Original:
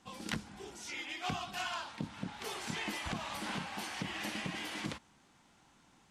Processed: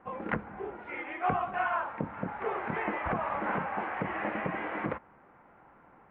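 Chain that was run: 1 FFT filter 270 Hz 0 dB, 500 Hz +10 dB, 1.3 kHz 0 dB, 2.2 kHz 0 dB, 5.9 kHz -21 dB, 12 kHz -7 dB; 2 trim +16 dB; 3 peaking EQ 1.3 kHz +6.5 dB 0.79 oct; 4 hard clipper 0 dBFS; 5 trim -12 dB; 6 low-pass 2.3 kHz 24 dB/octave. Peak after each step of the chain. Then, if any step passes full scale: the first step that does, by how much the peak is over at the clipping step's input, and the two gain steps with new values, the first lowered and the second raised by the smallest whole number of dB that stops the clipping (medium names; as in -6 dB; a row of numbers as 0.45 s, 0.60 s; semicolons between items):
-21.5 dBFS, -5.5 dBFS, -3.0 dBFS, -3.0 dBFS, -15.0 dBFS, -14.5 dBFS; nothing clips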